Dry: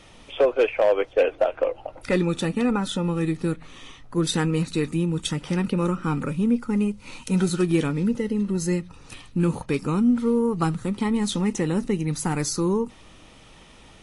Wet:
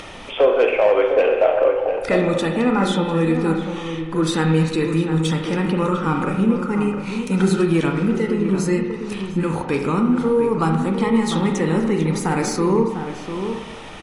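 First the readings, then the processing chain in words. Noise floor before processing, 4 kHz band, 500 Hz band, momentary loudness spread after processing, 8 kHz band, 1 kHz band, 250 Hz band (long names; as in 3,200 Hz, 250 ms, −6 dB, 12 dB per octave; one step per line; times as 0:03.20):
−49 dBFS, +3.0 dB, +6.0 dB, 9 LU, 0.0 dB, +8.0 dB, +4.0 dB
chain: high-shelf EQ 6,100 Hz +8.5 dB
in parallel at +2 dB: brickwall limiter −19 dBFS, peak gain reduction 11 dB
on the sum: upward compression, threshold −28 dBFS
mid-hump overdrive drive 8 dB, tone 1,400 Hz, clips at −5.5 dBFS
slap from a distant wall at 120 metres, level −8 dB
spring reverb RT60 1.1 s, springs 31/36/44 ms, chirp 45 ms, DRR 3 dB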